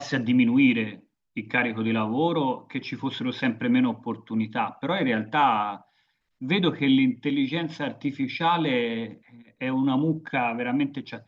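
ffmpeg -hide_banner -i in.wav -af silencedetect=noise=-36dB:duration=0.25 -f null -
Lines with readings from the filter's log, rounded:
silence_start: 0.94
silence_end: 1.37 | silence_duration: 0.42
silence_start: 5.77
silence_end: 6.42 | silence_duration: 0.65
silence_start: 9.13
silence_end: 9.61 | silence_duration: 0.48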